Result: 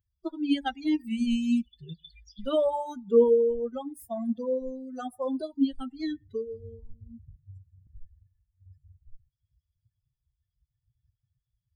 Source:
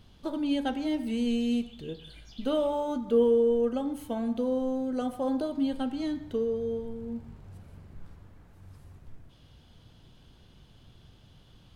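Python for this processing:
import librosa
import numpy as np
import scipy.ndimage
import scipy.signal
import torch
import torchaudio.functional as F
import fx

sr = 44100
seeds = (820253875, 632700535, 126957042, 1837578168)

y = fx.bin_expand(x, sr, power=3.0)
y = fx.highpass(y, sr, hz=86.0, slope=24, at=(7.36, 7.87))
y = y * 10.0 ** (6.5 / 20.0)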